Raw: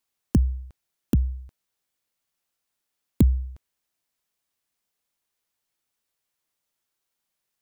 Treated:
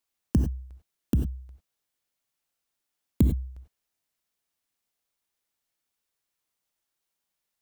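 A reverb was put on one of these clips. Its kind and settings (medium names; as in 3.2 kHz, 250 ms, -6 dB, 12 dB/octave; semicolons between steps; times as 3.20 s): gated-style reverb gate 120 ms rising, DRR 6 dB; trim -3 dB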